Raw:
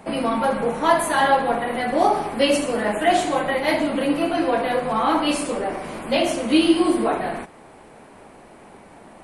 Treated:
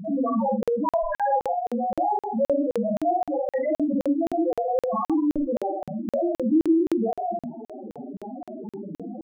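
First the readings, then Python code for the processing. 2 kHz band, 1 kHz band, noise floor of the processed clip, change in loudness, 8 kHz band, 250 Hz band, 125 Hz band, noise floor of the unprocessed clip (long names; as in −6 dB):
−17.0 dB, −5.5 dB, below −85 dBFS, −4.0 dB, below −20 dB, −1.5 dB, −3.5 dB, −46 dBFS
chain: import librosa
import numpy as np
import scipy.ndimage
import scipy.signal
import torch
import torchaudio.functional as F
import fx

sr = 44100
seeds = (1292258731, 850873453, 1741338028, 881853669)

y = fx.tracing_dist(x, sr, depth_ms=0.1)
y = fx.spec_topn(y, sr, count=1)
y = fx.low_shelf(y, sr, hz=380.0, db=11.0)
y = fx.room_early_taps(y, sr, ms=(49, 74), db=(-5.5, -15.5))
y = fx.rider(y, sr, range_db=10, speed_s=2.0)
y = fx.buffer_crackle(y, sr, first_s=0.63, period_s=0.26, block=2048, kind='zero')
y = fx.env_flatten(y, sr, amount_pct=50)
y = y * librosa.db_to_amplitude(-7.5)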